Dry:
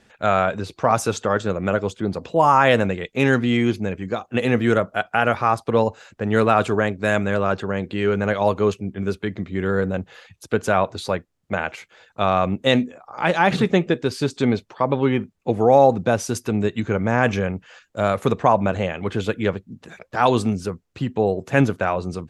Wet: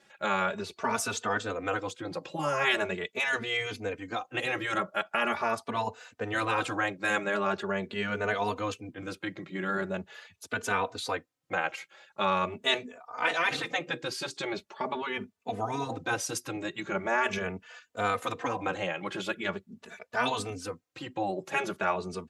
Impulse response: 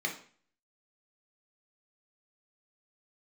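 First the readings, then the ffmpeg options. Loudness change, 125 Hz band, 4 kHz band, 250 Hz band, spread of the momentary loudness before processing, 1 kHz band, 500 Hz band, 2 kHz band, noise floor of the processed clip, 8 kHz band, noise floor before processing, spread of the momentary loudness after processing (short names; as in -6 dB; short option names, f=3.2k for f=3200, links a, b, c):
-10.0 dB, -17.5 dB, -3.5 dB, -15.0 dB, 10 LU, -9.5 dB, -13.5 dB, -4.5 dB, -72 dBFS, -3.0 dB, -64 dBFS, 10 LU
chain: -filter_complex "[0:a]afftfilt=real='re*lt(hypot(re,im),0.562)':imag='im*lt(hypot(re,im),0.562)':win_size=1024:overlap=0.75,highpass=f=450:p=1,asplit=2[a][b];[b]adelay=3.2,afreqshift=0.42[c];[a][c]amix=inputs=2:normalize=1"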